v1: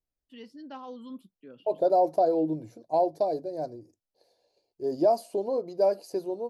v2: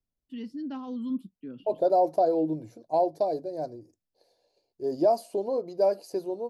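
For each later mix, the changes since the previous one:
first voice: add resonant low shelf 380 Hz +9 dB, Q 1.5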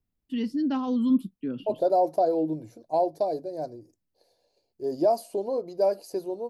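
first voice +9.0 dB; master: add high shelf 11000 Hz +8 dB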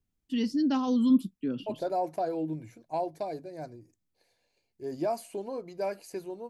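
second voice: add EQ curve 160 Hz 0 dB, 580 Hz -10 dB, 2200 Hz +9 dB, 5200 Hz -15 dB, 7800 Hz -6 dB; master: add bell 6100 Hz +10 dB 1.2 oct

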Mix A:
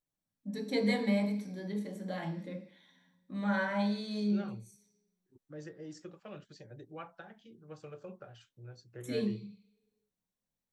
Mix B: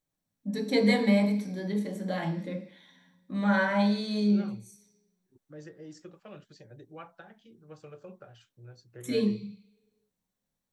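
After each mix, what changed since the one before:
first voice +6.5 dB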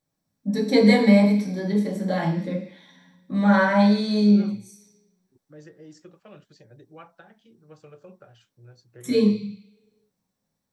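first voice: send +8.5 dB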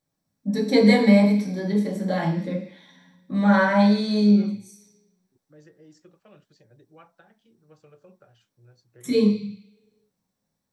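second voice -5.5 dB

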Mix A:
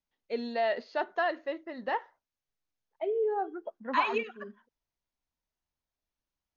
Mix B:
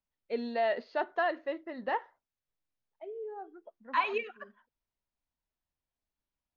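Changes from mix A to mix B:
second voice -11.5 dB; master: add air absorption 120 m

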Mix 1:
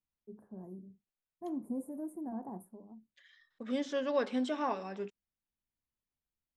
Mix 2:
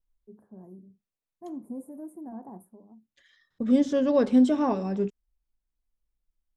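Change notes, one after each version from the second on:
second voice: remove band-pass 2200 Hz, Q 0.63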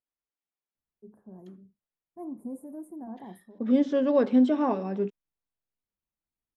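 first voice: entry +0.75 s; second voice: add BPF 200–3500 Hz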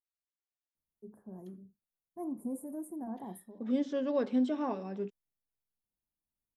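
second voice -8.5 dB; master: add high shelf 3900 Hz +8.5 dB

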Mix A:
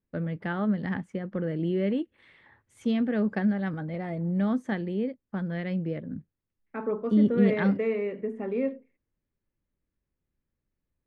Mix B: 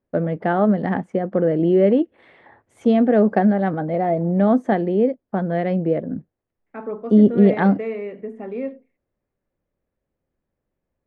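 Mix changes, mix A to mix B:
first voice: add bell 510 Hz +14 dB 3 oct; master: add bell 710 Hz +7.5 dB 0.29 oct

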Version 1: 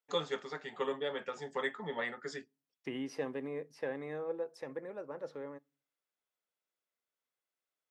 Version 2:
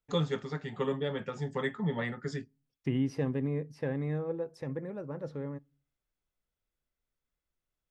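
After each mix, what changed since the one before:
master: remove HPF 440 Hz 12 dB/oct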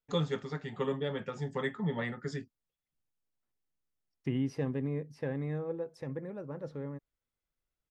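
second voice: entry +1.40 s; reverb: off

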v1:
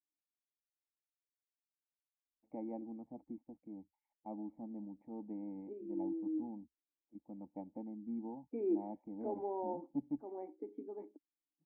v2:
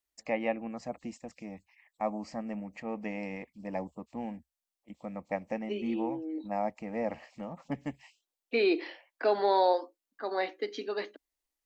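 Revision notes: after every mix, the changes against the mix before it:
first voice: entry -2.25 s; master: remove vocal tract filter u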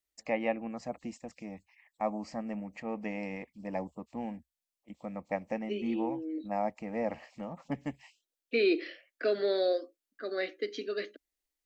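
second voice: add Butterworth band-stop 890 Hz, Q 1.3

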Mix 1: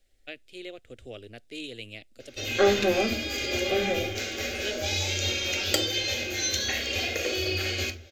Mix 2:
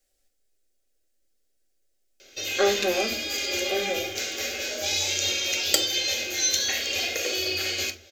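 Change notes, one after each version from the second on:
first voice: muted; master: add tone controls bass -11 dB, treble +7 dB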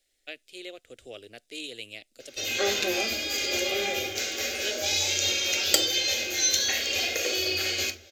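first voice: unmuted; second voice -6.5 dB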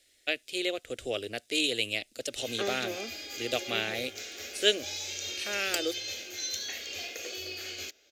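first voice +10.0 dB; background -9.0 dB; reverb: off

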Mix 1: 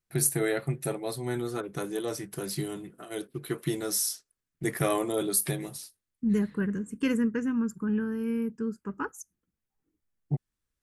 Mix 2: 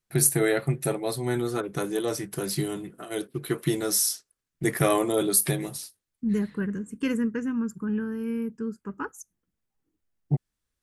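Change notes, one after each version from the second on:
first voice +4.5 dB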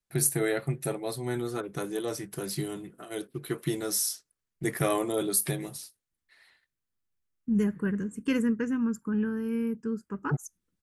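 first voice -4.5 dB; second voice: entry +1.25 s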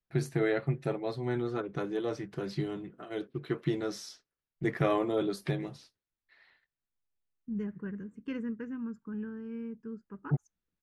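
second voice -9.5 dB; master: add air absorption 210 m

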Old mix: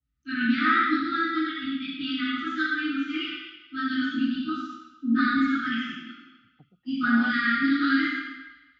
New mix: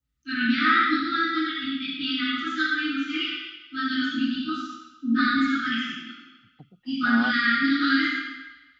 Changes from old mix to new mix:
second voice +7.0 dB; master: add high shelf 3300 Hz +11 dB

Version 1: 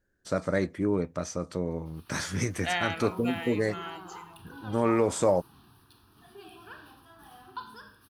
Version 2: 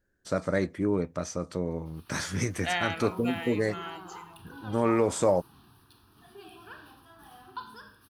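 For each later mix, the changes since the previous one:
none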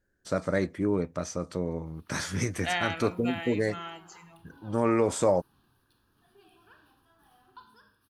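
background -11.0 dB

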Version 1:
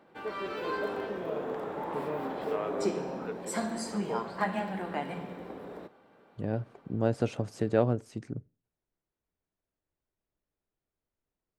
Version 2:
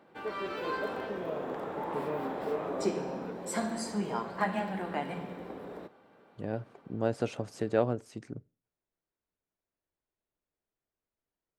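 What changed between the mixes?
first voice -7.5 dB; second voice: add low shelf 230 Hz -7.5 dB

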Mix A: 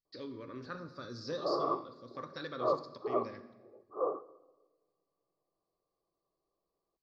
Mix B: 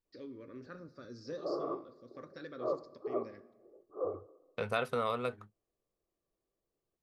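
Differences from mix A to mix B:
first voice: send -8.5 dB; second voice: unmuted; master: add graphic EQ 125/1000/4000 Hz -5/-10/-11 dB

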